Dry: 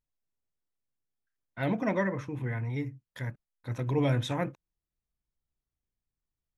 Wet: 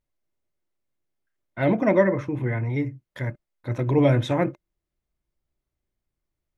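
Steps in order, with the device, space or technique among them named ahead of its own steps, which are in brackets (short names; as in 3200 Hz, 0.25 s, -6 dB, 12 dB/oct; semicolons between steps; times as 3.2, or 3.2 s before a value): inside a helmet (high shelf 3700 Hz -8 dB; small resonant body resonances 350/590/2100 Hz, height 8 dB); gain +6.5 dB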